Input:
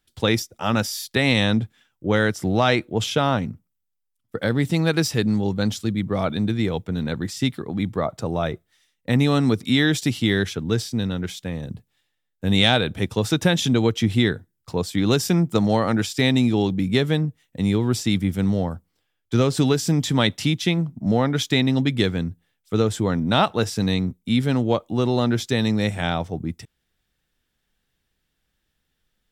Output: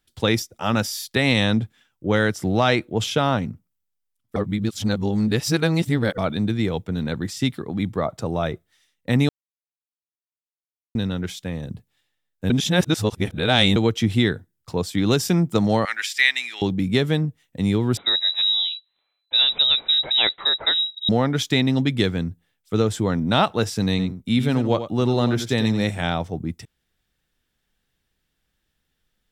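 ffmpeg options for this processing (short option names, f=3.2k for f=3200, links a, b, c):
-filter_complex "[0:a]asettb=1/sr,asplit=3[a][b][c];[a]atrim=end=15.854[d];[b]atrim=start=15.85:end=16.62,asetpts=PTS-STARTPTS,afade=t=in:d=0.004:c=qsin,afade=t=out:st=0.766:d=0.004:c=qsin,highpass=f=1.9k:t=q:w=3.3[e];[c]atrim=start=16.616[f];[d][e]acrossfade=d=0.004:c1=hsin:c2=qsin[g];[g][f]acrossfade=d=0.004:c1=qsin:c2=hsin,asettb=1/sr,asplit=3[h][i][j];[h]atrim=end=17.974[k];[i]atrim=start=17.97:end=21.09,asetpts=PTS-STARTPTS,afade=t=in:d=0.004:c=qsin,afade=t=out:st=3.116:d=0.004:c=qsin,lowpass=f=3.4k:t=q:w=0.5098,lowpass=f=3.4k:t=q:w=0.6013,lowpass=f=3.4k:t=q:w=0.9,lowpass=f=3.4k:t=q:w=2.563,afreqshift=-4000[l];[j]atrim=start=21.086[m];[k][l]acrossfade=d=0.004:c1=hsin:c2=qsin[n];[n][m]acrossfade=d=0.004:c1=qsin:c2=hsin,asettb=1/sr,asplit=3[o][p][q];[o]atrim=end=23.904[r];[p]atrim=start=23.9:end=25.91,asetpts=PTS-STARTPTS,afade=t=in:d=0.004:c=qsin,afade=t=out:st=2.006:d=0.004:c=qsin,aecho=1:1:90:0.299,atrim=end_sample=88641[s];[q]atrim=start=25.906[t];[r][s]acrossfade=d=0.004:c1=hsin:c2=qsin[u];[u][t]acrossfade=d=0.004:c1=qsin:c2=hsin,asplit=7[v][w][x][y][z][aa][ab];[v]atrim=end=4.362[ac];[w]atrim=start=4.358:end=6.182,asetpts=PTS-STARTPTS,areverse[ad];[x]atrim=start=6.178:end=9.29,asetpts=PTS-STARTPTS,afade=t=out:st=3.108:d=0.004:c=hsin[ae];[y]atrim=start=9.29:end=10.95,asetpts=PTS-STARTPTS,volume=0[af];[z]atrim=start=10.95:end=12.502,asetpts=PTS-STARTPTS,afade=t=in:d=0.004:c=hsin[ag];[aa]atrim=start=12.498:end=13.762,asetpts=PTS-STARTPTS,areverse[ah];[ab]atrim=start=13.758[ai];[ac][ad]acrossfade=d=0.004:c1=hsin:c2=hsin[aj];[ae][af][ag]concat=n=3:v=0:a=1[ak];[aj][ak]acrossfade=d=0.004:c1=hsin:c2=hsin[al];[al][ah]acrossfade=d=0.004:c1=hsin:c2=hsin[am];[am][ai]acrossfade=d=0.004:c1=hsin:c2=hsin"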